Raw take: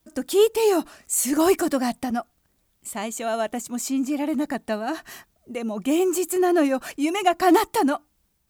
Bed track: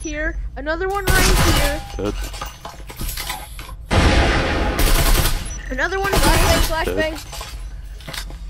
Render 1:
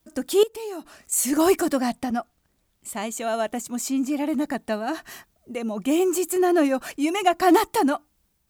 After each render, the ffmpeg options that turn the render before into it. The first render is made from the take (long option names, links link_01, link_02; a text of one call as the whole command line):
ffmpeg -i in.wav -filter_complex "[0:a]asettb=1/sr,asplit=3[link_01][link_02][link_03];[link_01]atrim=end=0.434[link_04];[link_02]atrim=start=0.43:end=1.12,asetpts=PTS-STARTPTS,afade=type=in:duration=0.004:curve=qsin,afade=type=out:start_time=0.686:duration=0.004:curve=qsin,acompressor=threshold=-42dB:ratio=2:attack=3.2:release=140:knee=1:detection=peak[link_05];[link_03]atrim=start=1.116[link_06];[link_04][link_05]acrossfade=duration=0.004:curve1=hsin:curve2=qsin[link_07];[link_07][link_06]acrossfade=duration=0.004:curve1=qsin:curve2=hsin,asettb=1/sr,asplit=3[link_08][link_09][link_10];[link_08]atrim=end=1.804[link_11];[link_09]atrim=start=1.8:end=2.89,asetpts=PTS-STARTPTS,afade=type=in:duration=0.004:curve=qsin,afade=type=out:start_time=1.086:duration=0.004:curve=qsin,highshelf=frequency=8800:gain=-5.5[link_12];[link_10]atrim=start=2.886[link_13];[link_11][link_12]acrossfade=duration=0.004:curve1=hsin:curve2=qsin[link_14];[link_14][link_13]acrossfade=duration=0.004:curve1=qsin:curve2=hsin" out.wav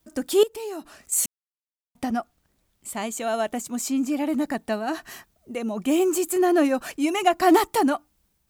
ffmpeg -i in.wav -filter_complex "[0:a]asplit=3[link_01][link_02][link_03];[link_01]atrim=end=1.26,asetpts=PTS-STARTPTS,afade=type=out:start_time=1.256:duration=0.004:curve=hsin[link_04];[link_02]atrim=start=1.26:end=1.95,asetpts=PTS-STARTPTS,volume=0[link_05];[link_03]atrim=start=1.95,asetpts=PTS-STARTPTS,afade=type=in:duration=0.004:curve=hsin[link_06];[link_04][link_05][link_06]concat=n=3:v=0:a=1" out.wav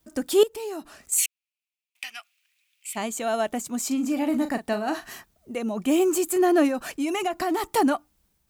ffmpeg -i in.wav -filter_complex "[0:a]asplit=3[link_01][link_02][link_03];[link_01]afade=type=out:start_time=1.17:duration=0.02[link_04];[link_02]highpass=frequency=2500:width_type=q:width=5.9,afade=type=in:start_time=1.17:duration=0.02,afade=type=out:start_time=2.95:duration=0.02[link_05];[link_03]afade=type=in:start_time=2.95:duration=0.02[link_06];[link_04][link_05][link_06]amix=inputs=3:normalize=0,asettb=1/sr,asplit=3[link_07][link_08][link_09];[link_07]atrim=end=3.874[link_10];[link_08]atrim=start=3.87:end=5.13,asetpts=PTS-STARTPTS,afade=type=in:duration=0.004:curve=qsin,afade=type=out:start_time=1.256:duration=0.004:curve=qsin,asplit=2[link_11][link_12];[link_12]adelay=39,volume=-9.5dB[link_13];[link_11][link_13]amix=inputs=2:normalize=0,atrim=end_sample=55566[link_14];[link_09]atrim=start=5.126[link_15];[link_10][link_14]acrossfade=duration=0.004:curve1=hsin:curve2=qsin[link_16];[link_16][link_15]acrossfade=duration=0.004:curve1=qsin:curve2=hsin,asettb=1/sr,asplit=3[link_17][link_18][link_19];[link_17]atrim=end=6.684[link_20];[link_18]atrim=start=6.68:end=7.64,asetpts=PTS-STARTPTS,afade=type=in:duration=0.004:curve=qsin,afade=type=out:start_time=0.956:duration=0.004:curve=qsin,acompressor=threshold=-22dB:ratio=6:attack=3.2:release=140:knee=1:detection=peak[link_21];[link_19]atrim=start=7.636[link_22];[link_20][link_21]acrossfade=duration=0.004:curve1=hsin:curve2=qsin[link_23];[link_23][link_22]acrossfade=duration=0.004:curve1=qsin:curve2=hsin" out.wav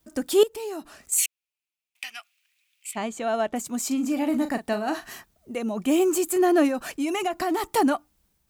ffmpeg -i in.wav -filter_complex "[0:a]asettb=1/sr,asplit=3[link_01][link_02][link_03];[link_01]atrim=end=2.914[link_04];[link_02]atrim=start=2.91:end=3.56,asetpts=PTS-STARTPTS,afade=type=in:duration=0.004:curve=qsin,afade=type=out:start_time=0.646:duration=0.004:curve=qsin,aemphasis=mode=reproduction:type=50fm[link_05];[link_03]atrim=start=3.556[link_06];[link_04][link_05]acrossfade=duration=0.004:curve1=hsin:curve2=qsin[link_07];[link_07][link_06]acrossfade=duration=0.004:curve1=qsin:curve2=hsin" out.wav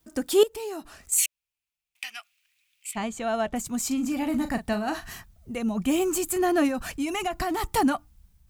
ffmpeg -i in.wav -af "asubboost=boost=8.5:cutoff=120,bandreject=frequency=600:width=16" out.wav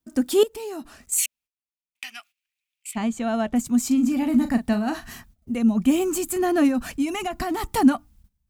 ffmpeg -i in.wav -af "agate=range=-15dB:threshold=-52dB:ratio=16:detection=peak,equalizer=frequency=240:width=3.1:gain=10.5" out.wav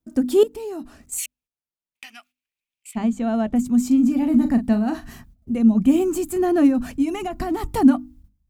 ffmpeg -i in.wav -af "tiltshelf=frequency=690:gain=5.5,bandreject=frequency=50:width_type=h:width=6,bandreject=frequency=100:width_type=h:width=6,bandreject=frequency=150:width_type=h:width=6,bandreject=frequency=200:width_type=h:width=6,bandreject=frequency=250:width_type=h:width=6,bandreject=frequency=300:width_type=h:width=6" out.wav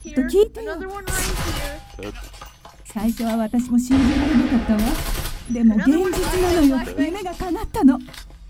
ffmpeg -i in.wav -i bed.wav -filter_complex "[1:a]volume=-9.5dB[link_01];[0:a][link_01]amix=inputs=2:normalize=0" out.wav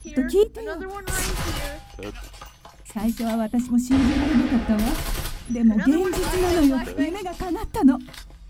ffmpeg -i in.wav -af "volume=-2.5dB" out.wav